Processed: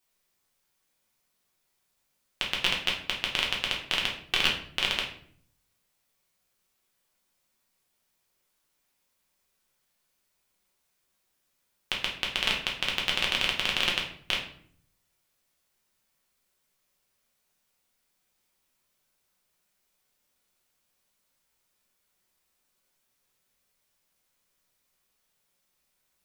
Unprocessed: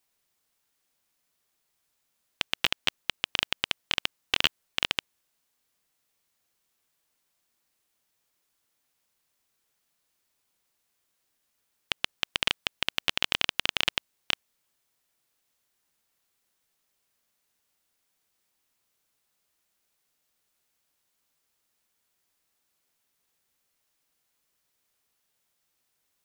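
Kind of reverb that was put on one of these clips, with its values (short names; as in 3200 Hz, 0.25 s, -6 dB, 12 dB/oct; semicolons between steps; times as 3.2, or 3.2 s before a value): shoebox room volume 79 m³, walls mixed, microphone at 0.96 m; gain -2.5 dB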